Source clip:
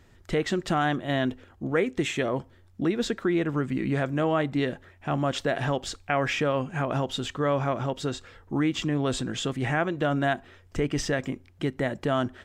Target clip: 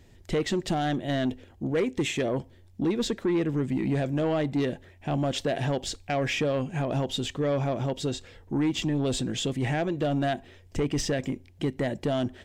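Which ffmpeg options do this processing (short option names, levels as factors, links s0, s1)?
-af "equalizer=f=1300:t=o:w=0.78:g=-11.5,aeval=exprs='0.211*(cos(1*acos(clip(val(0)/0.211,-1,1)))-cos(1*PI/2))+0.0266*(cos(5*acos(clip(val(0)/0.211,-1,1)))-cos(5*PI/2))':c=same,volume=0.794"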